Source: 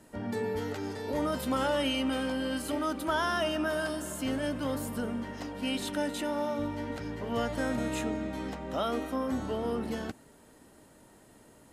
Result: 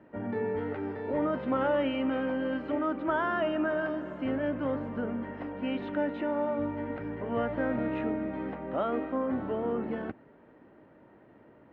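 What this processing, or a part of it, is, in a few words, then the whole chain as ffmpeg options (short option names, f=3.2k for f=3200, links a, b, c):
bass cabinet: -af "highpass=60,equalizer=f=71:t=q:w=4:g=-8,equalizer=f=340:t=q:w=4:g=4,equalizer=f=550:t=q:w=4:g=3,lowpass=f=2.3k:w=0.5412,lowpass=f=2.3k:w=1.3066"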